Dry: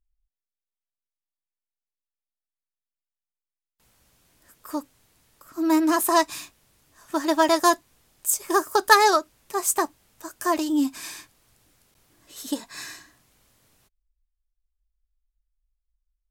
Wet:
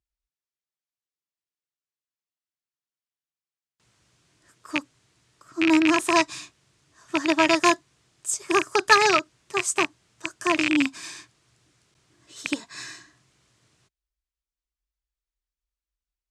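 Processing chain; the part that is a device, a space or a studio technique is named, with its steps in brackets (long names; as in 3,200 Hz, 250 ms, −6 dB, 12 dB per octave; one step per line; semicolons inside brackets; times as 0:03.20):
car door speaker with a rattle (loose part that buzzes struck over −41 dBFS, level −9 dBFS; loudspeaker in its box 84–8,200 Hz, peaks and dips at 130 Hz +6 dB, 240 Hz −5 dB, 340 Hz +3 dB, 530 Hz −5 dB, 820 Hz −5 dB)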